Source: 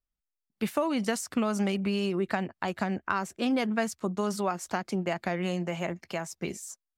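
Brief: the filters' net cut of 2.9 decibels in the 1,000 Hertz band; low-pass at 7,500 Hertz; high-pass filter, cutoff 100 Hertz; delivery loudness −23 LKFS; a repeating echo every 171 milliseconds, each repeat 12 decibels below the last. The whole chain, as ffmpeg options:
ffmpeg -i in.wav -af "highpass=100,lowpass=7500,equalizer=frequency=1000:width_type=o:gain=-4,aecho=1:1:171|342|513:0.251|0.0628|0.0157,volume=8dB" out.wav

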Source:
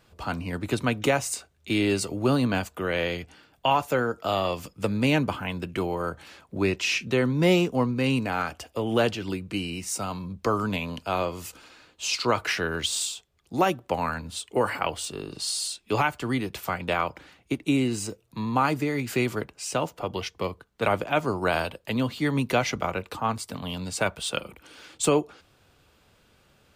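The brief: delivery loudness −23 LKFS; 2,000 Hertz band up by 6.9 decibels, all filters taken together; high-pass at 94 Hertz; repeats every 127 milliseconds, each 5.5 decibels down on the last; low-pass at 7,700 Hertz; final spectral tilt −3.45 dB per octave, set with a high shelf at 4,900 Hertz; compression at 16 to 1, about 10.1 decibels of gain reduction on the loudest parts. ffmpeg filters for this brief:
ffmpeg -i in.wav -af "highpass=94,lowpass=7700,equalizer=frequency=2000:width_type=o:gain=8.5,highshelf=frequency=4900:gain=4,acompressor=threshold=-25dB:ratio=16,aecho=1:1:127|254|381|508|635|762|889:0.531|0.281|0.149|0.079|0.0419|0.0222|0.0118,volume=6.5dB" out.wav

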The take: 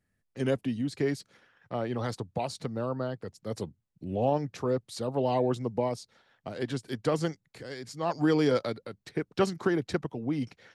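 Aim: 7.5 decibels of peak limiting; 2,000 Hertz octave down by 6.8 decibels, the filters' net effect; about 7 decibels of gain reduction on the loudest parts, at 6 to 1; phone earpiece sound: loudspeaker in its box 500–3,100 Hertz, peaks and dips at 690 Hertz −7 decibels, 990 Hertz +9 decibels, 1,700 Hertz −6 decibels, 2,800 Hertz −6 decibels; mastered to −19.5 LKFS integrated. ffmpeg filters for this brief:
ffmpeg -i in.wav -af "equalizer=frequency=2000:width_type=o:gain=-4,acompressor=threshold=-28dB:ratio=6,alimiter=level_in=2dB:limit=-24dB:level=0:latency=1,volume=-2dB,highpass=500,equalizer=frequency=690:width_type=q:width=4:gain=-7,equalizer=frequency=990:width_type=q:width=4:gain=9,equalizer=frequency=1700:width_type=q:width=4:gain=-6,equalizer=frequency=2800:width_type=q:width=4:gain=-6,lowpass=frequency=3100:width=0.5412,lowpass=frequency=3100:width=1.3066,volume=24dB" out.wav

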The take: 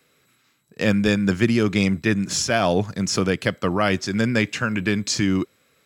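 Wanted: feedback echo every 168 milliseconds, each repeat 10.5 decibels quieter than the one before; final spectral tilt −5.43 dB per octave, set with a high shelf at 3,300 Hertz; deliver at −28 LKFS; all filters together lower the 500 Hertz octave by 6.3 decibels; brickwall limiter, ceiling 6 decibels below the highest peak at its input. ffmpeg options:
ffmpeg -i in.wav -af "equalizer=frequency=500:width_type=o:gain=-8,highshelf=frequency=3300:gain=-8.5,alimiter=limit=-14dB:level=0:latency=1,aecho=1:1:168|336|504:0.299|0.0896|0.0269,volume=-2.5dB" out.wav

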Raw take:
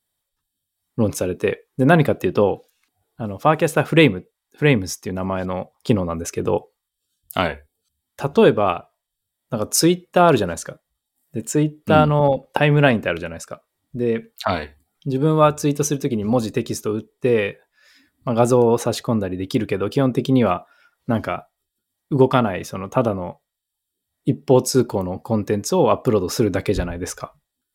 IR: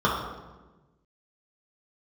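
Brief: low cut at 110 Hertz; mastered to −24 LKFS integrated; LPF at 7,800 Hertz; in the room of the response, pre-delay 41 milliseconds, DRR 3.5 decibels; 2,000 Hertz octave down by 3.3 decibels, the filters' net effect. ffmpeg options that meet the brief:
-filter_complex "[0:a]highpass=110,lowpass=7800,equalizer=frequency=2000:width_type=o:gain=-4.5,asplit=2[link_01][link_02];[1:a]atrim=start_sample=2205,adelay=41[link_03];[link_02][link_03]afir=irnorm=-1:irlink=0,volume=-21.5dB[link_04];[link_01][link_04]amix=inputs=2:normalize=0,volume=-5.5dB"

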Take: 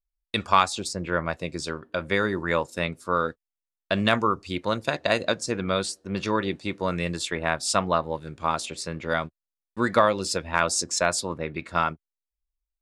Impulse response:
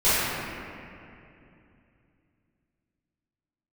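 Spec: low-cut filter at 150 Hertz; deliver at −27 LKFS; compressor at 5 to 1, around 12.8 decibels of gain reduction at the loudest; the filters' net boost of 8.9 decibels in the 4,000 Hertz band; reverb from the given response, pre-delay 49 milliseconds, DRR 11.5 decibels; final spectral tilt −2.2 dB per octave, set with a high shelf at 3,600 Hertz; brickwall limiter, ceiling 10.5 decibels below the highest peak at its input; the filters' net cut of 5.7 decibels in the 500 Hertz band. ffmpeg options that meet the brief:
-filter_complex "[0:a]highpass=150,equalizer=frequency=500:width_type=o:gain=-7.5,highshelf=frequency=3600:gain=6.5,equalizer=frequency=4000:width_type=o:gain=6.5,acompressor=threshold=-28dB:ratio=5,alimiter=limit=-20dB:level=0:latency=1,asplit=2[link_01][link_02];[1:a]atrim=start_sample=2205,adelay=49[link_03];[link_02][link_03]afir=irnorm=-1:irlink=0,volume=-31dB[link_04];[link_01][link_04]amix=inputs=2:normalize=0,volume=6.5dB"

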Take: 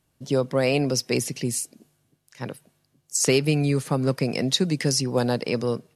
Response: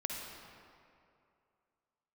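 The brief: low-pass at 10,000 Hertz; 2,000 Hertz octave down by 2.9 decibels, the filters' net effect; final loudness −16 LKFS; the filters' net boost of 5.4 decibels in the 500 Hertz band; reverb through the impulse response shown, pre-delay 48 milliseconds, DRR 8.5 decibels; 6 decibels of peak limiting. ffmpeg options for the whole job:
-filter_complex "[0:a]lowpass=10000,equalizer=frequency=500:width_type=o:gain=6.5,equalizer=frequency=2000:width_type=o:gain=-4,alimiter=limit=-10.5dB:level=0:latency=1,asplit=2[link_01][link_02];[1:a]atrim=start_sample=2205,adelay=48[link_03];[link_02][link_03]afir=irnorm=-1:irlink=0,volume=-10.5dB[link_04];[link_01][link_04]amix=inputs=2:normalize=0,volume=6dB"

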